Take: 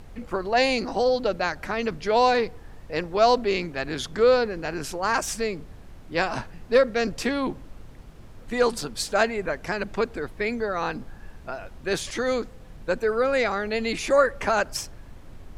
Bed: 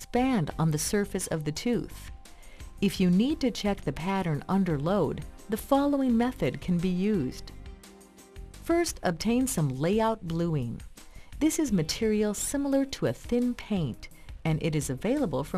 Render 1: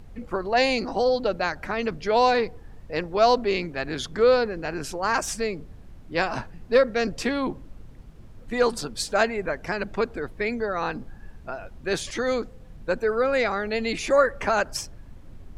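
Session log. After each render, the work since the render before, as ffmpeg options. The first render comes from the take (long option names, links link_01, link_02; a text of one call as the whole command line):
ffmpeg -i in.wav -af "afftdn=noise_reduction=6:noise_floor=-45" out.wav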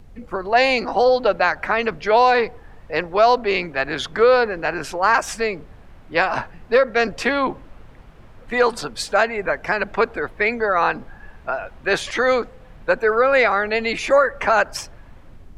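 ffmpeg -i in.wav -filter_complex "[0:a]acrossover=split=530|3200[link_01][link_02][link_03];[link_02]dynaudnorm=framelen=190:gausssize=5:maxgain=11.5dB[link_04];[link_01][link_04][link_03]amix=inputs=3:normalize=0,alimiter=limit=-5.5dB:level=0:latency=1:release=182" out.wav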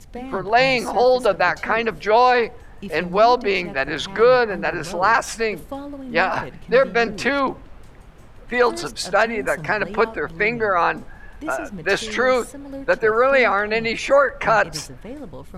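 ffmpeg -i in.wav -i bed.wav -filter_complex "[1:a]volume=-8dB[link_01];[0:a][link_01]amix=inputs=2:normalize=0" out.wav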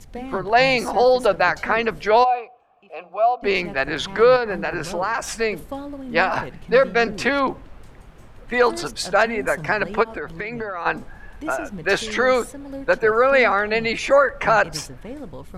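ffmpeg -i in.wav -filter_complex "[0:a]asplit=3[link_01][link_02][link_03];[link_01]afade=type=out:start_time=2.23:duration=0.02[link_04];[link_02]asplit=3[link_05][link_06][link_07];[link_05]bandpass=frequency=730:width_type=q:width=8,volume=0dB[link_08];[link_06]bandpass=frequency=1090:width_type=q:width=8,volume=-6dB[link_09];[link_07]bandpass=frequency=2440:width_type=q:width=8,volume=-9dB[link_10];[link_08][link_09][link_10]amix=inputs=3:normalize=0,afade=type=in:start_time=2.23:duration=0.02,afade=type=out:start_time=3.42:duration=0.02[link_11];[link_03]afade=type=in:start_time=3.42:duration=0.02[link_12];[link_04][link_11][link_12]amix=inputs=3:normalize=0,asettb=1/sr,asplit=3[link_13][link_14][link_15];[link_13]atrim=end=4.364[link_16];[link_14]atrim=start=4.36:end=5.32,asetpts=PTS-STARTPTS,afade=type=in:duration=0.004:curve=qsin,afade=type=out:start_time=0.956:duration=0.004:curve=qsin,acompressor=threshold=-18dB:ratio=6:attack=3.2:release=140:knee=1:detection=peak[link_17];[link_15]atrim=start=5.316[link_18];[link_16][link_17]acrossfade=duration=0.004:curve1=hsin:curve2=qsin[link_19];[link_19][link_18]acrossfade=duration=0.004:curve1=qsin:curve2=hsin,asplit=3[link_20][link_21][link_22];[link_20]afade=type=out:start_time=10.02:duration=0.02[link_23];[link_21]acompressor=threshold=-24dB:ratio=12:attack=3.2:release=140:knee=1:detection=peak,afade=type=in:start_time=10.02:duration=0.02,afade=type=out:start_time=10.85:duration=0.02[link_24];[link_22]afade=type=in:start_time=10.85:duration=0.02[link_25];[link_23][link_24][link_25]amix=inputs=3:normalize=0" out.wav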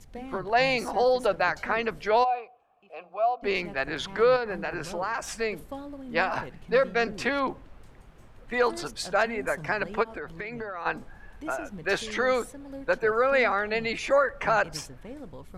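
ffmpeg -i in.wav -af "volume=-7dB" out.wav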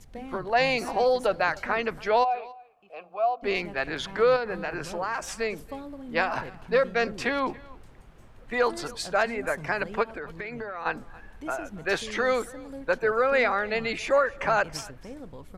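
ffmpeg -i in.wav -af "aecho=1:1:280:0.0794" out.wav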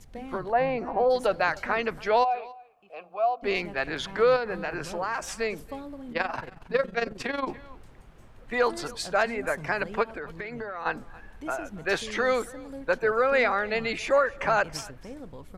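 ffmpeg -i in.wav -filter_complex "[0:a]asplit=3[link_01][link_02][link_03];[link_01]afade=type=out:start_time=0.51:duration=0.02[link_04];[link_02]lowpass=1300,afade=type=in:start_time=0.51:duration=0.02,afade=type=out:start_time=1.09:duration=0.02[link_05];[link_03]afade=type=in:start_time=1.09:duration=0.02[link_06];[link_04][link_05][link_06]amix=inputs=3:normalize=0,asettb=1/sr,asplit=3[link_07][link_08][link_09];[link_07]atrim=end=6.124[link_10];[link_08]atrim=start=6.12:end=7.49,asetpts=PTS-STARTPTS,afade=type=in:duration=0.004:curve=qsin,afade=type=out:start_time=1.366:duration=0.004:curve=qsin,tremolo=f=22:d=0.75[link_11];[link_09]atrim=start=7.486[link_12];[link_10][link_11]acrossfade=duration=0.004:curve1=hsin:curve2=qsin[link_13];[link_13][link_12]acrossfade=duration=0.004:curve1=qsin:curve2=hsin,asettb=1/sr,asplit=3[link_14][link_15][link_16];[link_14]atrim=end=10.414[link_17];[link_15]atrim=start=10.41:end=10.93,asetpts=PTS-STARTPTS,afade=type=in:duration=0.004:curve=qsin,afade=type=out:start_time=0.516:duration=0.004:curve=qsin,bandreject=frequency=2400:width=12[link_18];[link_16]atrim=start=10.926[link_19];[link_17][link_18]acrossfade=duration=0.004:curve1=hsin:curve2=qsin[link_20];[link_20][link_19]acrossfade=duration=0.004:curve1=qsin:curve2=hsin" out.wav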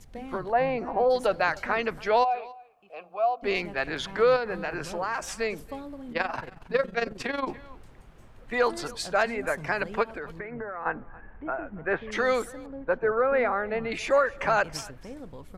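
ffmpeg -i in.wav -filter_complex "[0:a]asplit=3[link_01][link_02][link_03];[link_01]afade=type=out:start_time=10.38:duration=0.02[link_04];[link_02]lowpass=frequency=2000:width=0.5412,lowpass=frequency=2000:width=1.3066,afade=type=in:start_time=10.38:duration=0.02,afade=type=out:start_time=12.11:duration=0.02[link_05];[link_03]afade=type=in:start_time=12.11:duration=0.02[link_06];[link_04][link_05][link_06]amix=inputs=3:normalize=0,asettb=1/sr,asplit=3[link_07][link_08][link_09];[link_07]atrim=end=12.664[link_10];[link_08]atrim=start=12.66:end=13.92,asetpts=PTS-STARTPTS,afade=type=in:duration=0.004:curve=qsin,afade=type=out:start_time=1.256:duration=0.004:curve=qsin,lowpass=1500[link_11];[link_09]atrim=start=13.916[link_12];[link_10][link_11]acrossfade=duration=0.004:curve1=hsin:curve2=qsin[link_13];[link_13][link_12]acrossfade=duration=0.004:curve1=qsin:curve2=hsin" out.wav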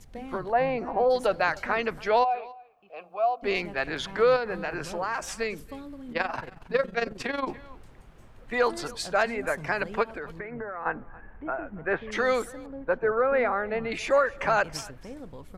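ffmpeg -i in.wav -filter_complex "[0:a]asettb=1/sr,asplit=3[link_01][link_02][link_03];[link_01]atrim=end=2.194[link_04];[link_02]atrim=start=2.19:end=2.98,asetpts=PTS-STARTPTS,afade=type=in:duration=0.004:curve=qsin,afade=type=out:start_time=0.786:duration=0.004:curve=qsin,equalizer=frequency=9400:width_type=o:width=0.91:gain=-14[link_05];[link_03]atrim=start=2.976[link_06];[link_04][link_05]acrossfade=duration=0.004:curve1=hsin:curve2=qsin[link_07];[link_07][link_06]acrossfade=duration=0.004:curve1=qsin:curve2=hsin,asettb=1/sr,asplit=3[link_08][link_09][link_10];[link_08]atrim=end=5.434[link_11];[link_09]atrim=start=5.43:end=6.09,asetpts=PTS-STARTPTS,afade=type=in:duration=0.004:curve=qsin,afade=type=out:start_time=0.656:duration=0.004:curve=qsin,equalizer=frequency=720:width=1.5:gain=-7.5[link_12];[link_10]atrim=start=6.086[link_13];[link_11][link_12]acrossfade=duration=0.004:curve1=hsin:curve2=qsin[link_14];[link_14][link_13]acrossfade=duration=0.004:curve1=qsin:curve2=hsin" out.wav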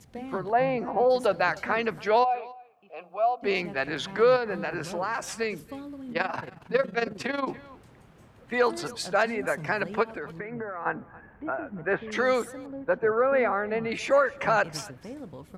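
ffmpeg -i in.wav -af "highpass=120,lowshelf=frequency=200:gain=6" out.wav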